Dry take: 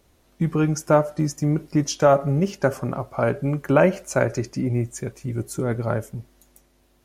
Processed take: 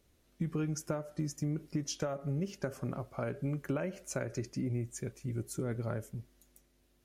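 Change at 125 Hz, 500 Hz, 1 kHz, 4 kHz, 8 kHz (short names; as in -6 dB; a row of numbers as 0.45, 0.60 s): -12.0, -18.0, -20.5, -10.5, -10.0 dB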